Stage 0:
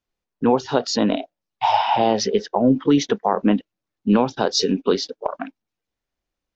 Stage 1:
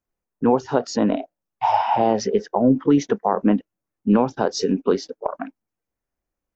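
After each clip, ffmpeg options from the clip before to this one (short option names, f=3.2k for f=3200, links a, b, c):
-af "equalizer=f=3.7k:t=o:w=1.1:g=-13"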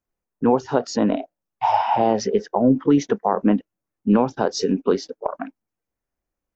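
-af anull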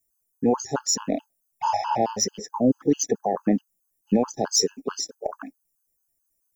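-af "aexciter=amount=6.6:drive=9.5:freq=5.6k,afftfilt=real='re*gt(sin(2*PI*4.6*pts/sr)*(1-2*mod(floor(b*sr/1024/850),2)),0)':imag='im*gt(sin(2*PI*4.6*pts/sr)*(1-2*mod(floor(b*sr/1024/850),2)),0)':win_size=1024:overlap=0.75,volume=-2.5dB"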